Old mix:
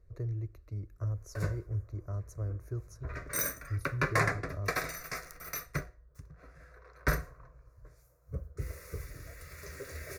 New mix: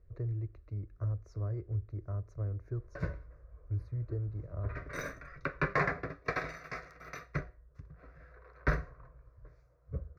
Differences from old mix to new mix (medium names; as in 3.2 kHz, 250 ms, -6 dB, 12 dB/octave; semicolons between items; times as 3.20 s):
background: entry +1.60 s; master: add distance through air 250 m